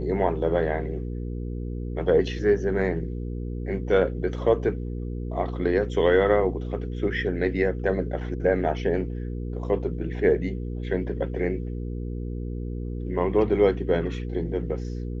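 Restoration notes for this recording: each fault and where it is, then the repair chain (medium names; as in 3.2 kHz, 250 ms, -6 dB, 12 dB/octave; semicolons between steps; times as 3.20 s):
hum 60 Hz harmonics 8 -31 dBFS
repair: de-hum 60 Hz, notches 8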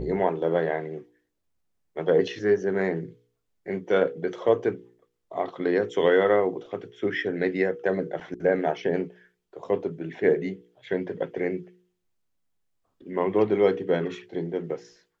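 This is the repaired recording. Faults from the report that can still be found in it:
nothing left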